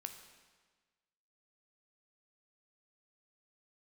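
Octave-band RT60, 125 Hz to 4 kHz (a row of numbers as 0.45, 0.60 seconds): 1.5, 1.5, 1.4, 1.4, 1.4, 1.3 seconds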